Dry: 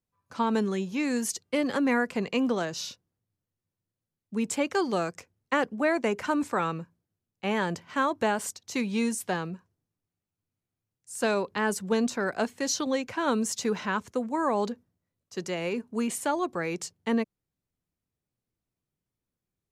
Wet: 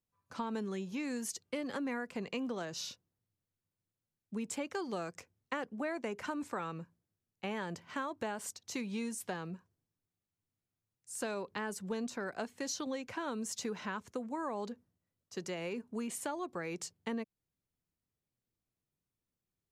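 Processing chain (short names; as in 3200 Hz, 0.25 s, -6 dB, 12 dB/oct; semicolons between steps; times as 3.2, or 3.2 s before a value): compressor 3:1, threshold -33 dBFS, peak gain reduction 10 dB; gain -4 dB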